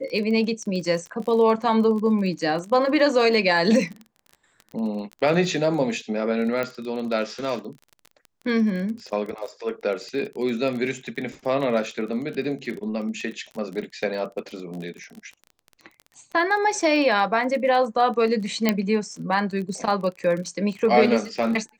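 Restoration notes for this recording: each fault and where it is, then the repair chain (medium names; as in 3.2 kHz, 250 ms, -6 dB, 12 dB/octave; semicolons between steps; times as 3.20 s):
crackle 26 per s -31 dBFS
6.63 s: pop -14 dBFS
18.69 s: pop -5 dBFS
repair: de-click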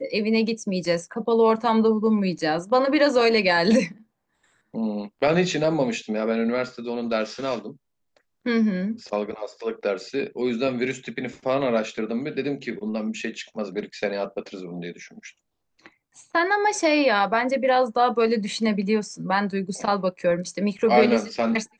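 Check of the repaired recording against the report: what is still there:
nothing left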